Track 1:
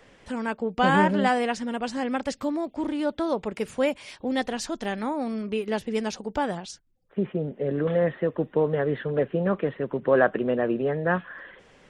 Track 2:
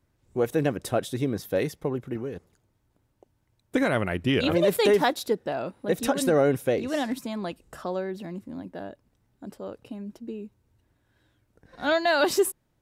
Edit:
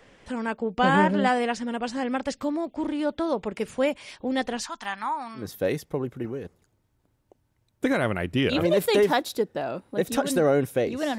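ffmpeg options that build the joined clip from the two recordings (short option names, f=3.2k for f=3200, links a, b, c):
-filter_complex "[0:a]asettb=1/sr,asplit=3[a][b][c];[a]atrim=end=4.634[d];[b]atrim=start=4.63:end=5.5,asetpts=PTS-STARTPTS,afade=t=in:d=0.004:c=qsin,afade=t=out:st=0.866:d=0.004:c=qsin,lowshelf=f=690:t=q:w=3:g=-12[e];[c]atrim=start=5.496[f];[d][e]acrossfade=d=0.004:c1=hsin:c2=qsin[g];[g][f]acrossfade=d=0.004:c1=qsin:c2=hsin,apad=whole_dur=11.18,atrim=end=11.18,atrim=end=5.5,asetpts=PTS-STARTPTS[h];[1:a]atrim=start=1.25:end=7.09,asetpts=PTS-STARTPTS[i];[h][i]acrossfade=d=0.16:c1=tri:c2=tri"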